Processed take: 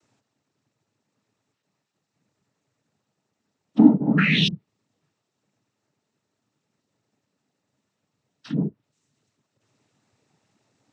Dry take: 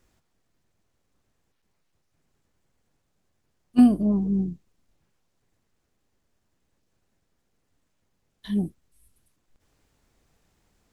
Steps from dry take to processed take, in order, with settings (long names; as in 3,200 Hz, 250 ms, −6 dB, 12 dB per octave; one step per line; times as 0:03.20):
treble cut that deepens with the level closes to 1,200 Hz, closed at −24 dBFS
sound drawn into the spectrogram rise, 0:04.17–0:04.48, 1,600–3,800 Hz −24 dBFS
cochlear-implant simulation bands 12
level +2 dB